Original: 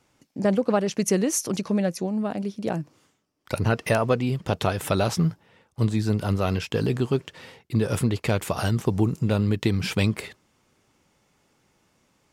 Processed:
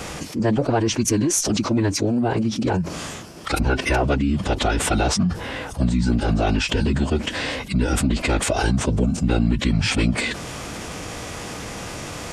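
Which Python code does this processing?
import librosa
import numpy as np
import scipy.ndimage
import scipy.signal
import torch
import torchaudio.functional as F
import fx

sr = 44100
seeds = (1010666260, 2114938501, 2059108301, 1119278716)

y = fx.cheby_harmonics(x, sr, harmonics=(2, 6), levels_db=(-25, -34), full_scale_db=-7.5)
y = fx.pitch_keep_formants(y, sr, semitones=-10.0)
y = fx.env_flatten(y, sr, amount_pct=70)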